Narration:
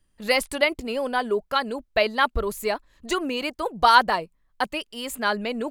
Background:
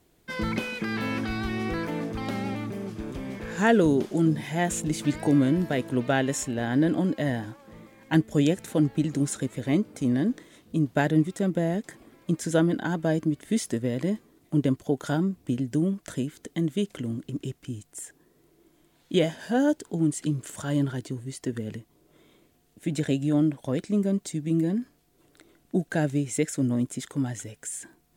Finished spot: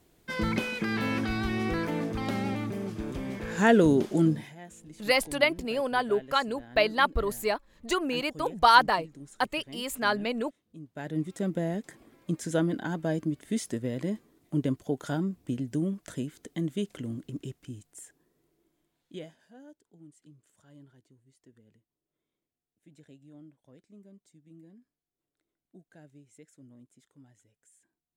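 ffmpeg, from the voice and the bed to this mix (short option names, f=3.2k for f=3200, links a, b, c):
-filter_complex "[0:a]adelay=4800,volume=-2.5dB[a];[1:a]volume=16.5dB,afade=t=out:st=4.22:d=0.33:silence=0.0891251,afade=t=in:st=10.93:d=0.48:silence=0.149624,afade=t=out:st=17.23:d=2.28:silence=0.0630957[b];[a][b]amix=inputs=2:normalize=0"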